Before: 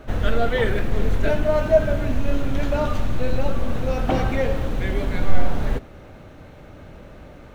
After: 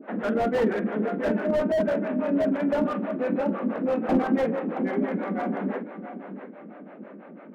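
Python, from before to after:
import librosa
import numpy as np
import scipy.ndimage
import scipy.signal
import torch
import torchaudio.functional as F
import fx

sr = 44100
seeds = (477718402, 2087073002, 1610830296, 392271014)

y = scipy.signal.sosfilt(scipy.signal.butter(4, 2200.0, 'lowpass', fs=sr, output='sos'), x)
y = fx.low_shelf(y, sr, hz=390.0, db=10.5)
y = fx.hum_notches(y, sr, base_hz=60, count=9)
y = fx.harmonic_tremolo(y, sr, hz=6.0, depth_pct=100, crossover_hz=420.0)
y = fx.brickwall_highpass(y, sr, low_hz=180.0)
y = fx.doubler(y, sr, ms=46.0, db=-13.5)
y = fx.echo_feedback(y, sr, ms=673, feedback_pct=29, wet_db=-11.0)
y = fx.slew_limit(y, sr, full_power_hz=47.0)
y = y * librosa.db_to_amplitude(1.5)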